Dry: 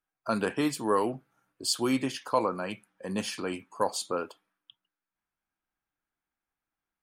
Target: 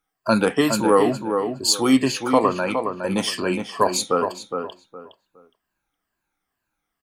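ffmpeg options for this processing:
-filter_complex "[0:a]afftfilt=real='re*pow(10,10/40*sin(2*PI*(1.4*log(max(b,1)*sr/1024/100)/log(2)-(-2.2)*(pts-256)/sr)))':imag='im*pow(10,10/40*sin(2*PI*(1.4*log(max(b,1)*sr/1024/100)/log(2)-(-2.2)*(pts-256)/sr)))':win_size=1024:overlap=0.75,asplit=2[a][b];[b]adelay=414,lowpass=f=2.3k:p=1,volume=-6dB,asplit=2[c][d];[d]adelay=414,lowpass=f=2.3k:p=1,volume=0.25,asplit=2[e][f];[f]adelay=414,lowpass=f=2.3k:p=1,volume=0.25[g];[a][c][e][g]amix=inputs=4:normalize=0,volume=8.5dB"

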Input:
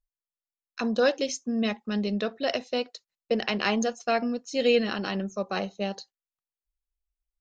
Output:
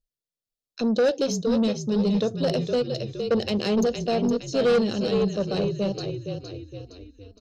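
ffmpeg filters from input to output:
-filter_complex "[0:a]equalizer=f=125:t=o:w=1:g=11,equalizer=f=250:t=o:w=1:g=3,equalizer=f=500:t=o:w=1:g=9,equalizer=f=1k:t=o:w=1:g=-10,equalizer=f=2k:t=o:w=1:g=-9,equalizer=f=4k:t=o:w=1:g=6,asplit=6[a][b][c][d][e][f];[b]adelay=464,afreqshift=-35,volume=-7.5dB[g];[c]adelay=928,afreqshift=-70,volume=-14.2dB[h];[d]adelay=1392,afreqshift=-105,volume=-21dB[i];[e]adelay=1856,afreqshift=-140,volume=-27.7dB[j];[f]adelay=2320,afreqshift=-175,volume=-34.5dB[k];[a][g][h][i][j][k]amix=inputs=6:normalize=0,asoftclip=type=tanh:threshold=-16dB"

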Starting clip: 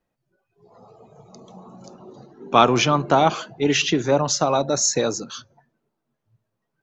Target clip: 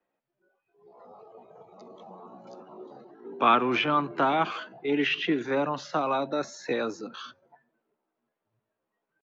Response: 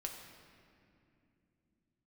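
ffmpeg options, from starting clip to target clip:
-filter_complex "[0:a]acrossover=split=320|1100[a][b][c];[b]acompressor=threshold=-33dB:ratio=5[d];[a][d][c]amix=inputs=3:normalize=0,acrossover=split=240 3600:gain=0.0891 1 0.0631[e][f][g];[e][f][g]amix=inputs=3:normalize=0,acrossover=split=3200[h][i];[i]acompressor=threshold=-45dB:ratio=4:attack=1:release=60[j];[h][j]amix=inputs=2:normalize=0,atempo=0.74"

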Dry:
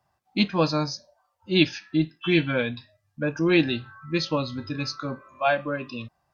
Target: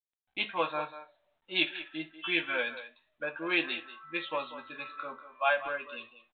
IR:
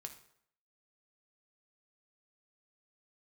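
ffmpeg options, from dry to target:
-filter_complex "[0:a]highpass=700,agate=range=-28dB:threshold=-58dB:ratio=16:detection=peak,asplit=2[a][b];[b]adelay=190,highpass=300,lowpass=3.4k,asoftclip=type=hard:threshold=-18dB,volume=-12dB[c];[a][c]amix=inputs=2:normalize=0,asplit=2[d][e];[1:a]atrim=start_sample=2205,atrim=end_sample=3087,adelay=12[f];[e][f]afir=irnorm=-1:irlink=0,volume=-0.5dB[g];[d][g]amix=inputs=2:normalize=0,volume=-3.5dB" -ar 8000 -c:a pcm_mulaw

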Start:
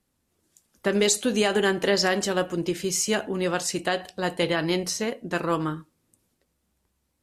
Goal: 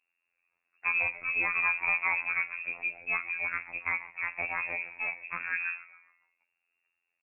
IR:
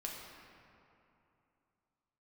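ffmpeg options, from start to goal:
-filter_complex "[0:a]lowpass=f=2.4k:t=q:w=0.5098,lowpass=f=2.4k:t=q:w=0.6013,lowpass=f=2.4k:t=q:w=0.9,lowpass=f=2.4k:t=q:w=2.563,afreqshift=-2800,asplit=5[a][b][c][d][e];[b]adelay=139,afreqshift=-120,volume=-18dB[f];[c]adelay=278,afreqshift=-240,volume=-25.1dB[g];[d]adelay=417,afreqshift=-360,volume=-32.3dB[h];[e]adelay=556,afreqshift=-480,volume=-39.4dB[i];[a][f][g][h][i]amix=inputs=5:normalize=0,afftfilt=real='hypot(re,im)*cos(PI*b)':imag='0':win_size=2048:overlap=0.75,volume=-3dB"

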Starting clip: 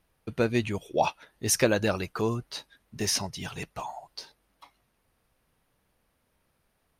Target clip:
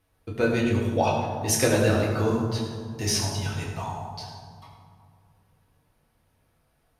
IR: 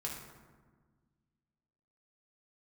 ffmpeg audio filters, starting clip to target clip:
-filter_complex "[1:a]atrim=start_sample=2205,asetrate=29547,aresample=44100[a];[0:a][a]afir=irnorm=-1:irlink=0"

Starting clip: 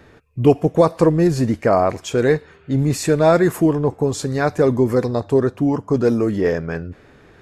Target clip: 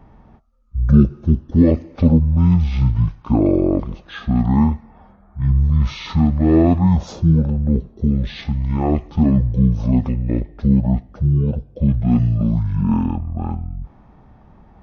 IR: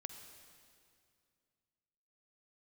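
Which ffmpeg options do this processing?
-af "bass=f=250:g=5,treble=f=4k:g=-6,asetrate=22050,aresample=44100,volume=-1dB"

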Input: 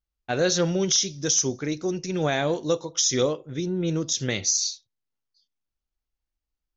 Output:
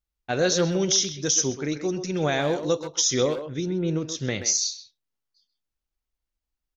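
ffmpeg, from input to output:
-filter_complex "[0:a]asettb=1/sr,asplit=3[a][b][c];[a]atrim=end=3.714[d];[b]atrim=start=3.71:end=4.46,asetpts=PTS-STARTPTS,afade=t=in:d=0.004:c=qsin,afade=t=out:st=0.746:d=0.004:c=qsin,highshelf=f=4.1k:g=-11[e];[c]atrim=start=4.456[f];[d][e]acrossfade=d=0.004:c1=hsin:c2=qsin[g];[g][f]acrossfade=d=0.004:c1=qsin:c2=hsin,asplit=2[h][i];[i]adelay=130,highpass=300,lowpass=3.4k,asoftclip=type=hard:threshold=-20dB,volume=-8dB[j];[h][j]amix=inputs=2:normalize=0"

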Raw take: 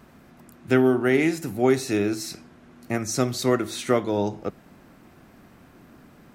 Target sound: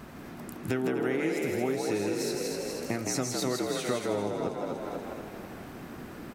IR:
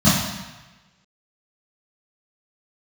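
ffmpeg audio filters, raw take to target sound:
-filter_complex "[0:a]asplit=2[a][b];[b]asplit=5[c][d][e][f][g];[c]adelay=241,afreqshift=31,volume=-9dB[h];[d]adelay=482,afreqshift=62,volume=-16.3dB[i];[e]adelay=723,afreqshift=93,volume=-23.7dB[j];[f]adelay=964,afreqshift=124,volume=-31dB[k];[g]adelay=1205,afreqshift=155,volume=-38.3dB[l];[h][i][j][k][l]amix=inputs=5:normalize=0[m];[a][m]amix=inputs=2:normalize=0,acompressor=threshold=-37dB:ratio=4,asplit=2[n][o];[o]asplit=4[p][q][r][s];[p]adelay=162,afreqshift=68,volume=-4dB[t];[q]adelay=324,afreqshift=136,volume=-13.9dB[u];[r]adelay=486,afreqshift=204,volume=-23.8dB[v];[s]adelay=648,afreqshift=272,volume=-33.7dB[w];[t][u][v][w]amix=inputs=4:normalize=0[x];[n][x]amix=inputs=2:normalize=0,volume=6dB"

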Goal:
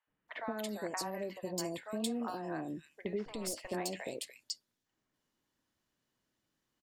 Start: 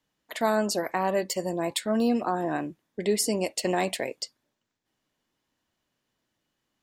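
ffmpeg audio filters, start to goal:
-filter_complex "[0:a]acompressor=threshold=-30dB:ratio=6,asettb=1/sr,asplit=3[a][b][c];[a]atrim=end=3.184[d];[b]atrim=start=3.18:end=3.64,asetpts=PTS-STARTPTS,afade=t=in:d=0.004:c=qsin,afade=t=out:st=0.456:d=0.004:c=qsin,aeval=exprs='clip(val(0),-1,0.0188)':c=same[e];[c]atrim=start=3.636[f];[d][e]acrossfade=d=0.004:c1=hsin:c2=qsin[g];[g][f]acrossfade=d=0.004:c1=qsin:c2=hsin,acrossover=split=700|2700[h][i][j];[h]adelay=70[k];[j]adelay=280[l];[k][i][l]amix=inputs=3:normalize=0,volume=-3dB"

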